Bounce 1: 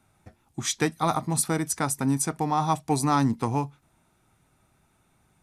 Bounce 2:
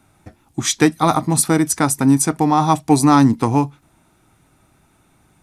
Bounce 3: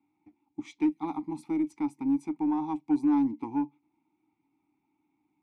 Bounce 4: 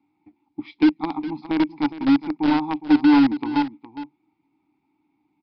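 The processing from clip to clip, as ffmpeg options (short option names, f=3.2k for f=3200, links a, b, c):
-af "equalizer=f=300:w=4.8:g=6,volume=8.5dB"
-filter_complex "[0:a]asplit=3[a][b][c];[a]bandpass=f=300:t=q:w=8,volume=0dB[d];[b]bandpass=f=870:t=q:w=8,volume=-6dB[e];[c]bandpass=f=2.24k:t=q:w=8,volume=-9dB[f];[d][e][f]amix=inputs=3:normalize=0,asoftclip=type=tanh:threshold=-8.5dB,aeval=exprs='0.335*(cos(1*acos(clip(val(0)/0.335,-1,1)))-cos(1*PI/2))+0.00266*(cos(6*acos(clip(val(0)/0.335,-1,1)))-cos(6*PI/2))':c=same,volume=-7.5dB"
-filter_complex "[0:a]asplit=2[a][b];[b]acrusher=bits=3:mix=0:aa=0.000001,volume=-6dB[c];[a][c]amix=inputs=2:normalize=0,aecho=1:1:412:0.2,aresample=11025,aresample=44100,volume=5.5dB"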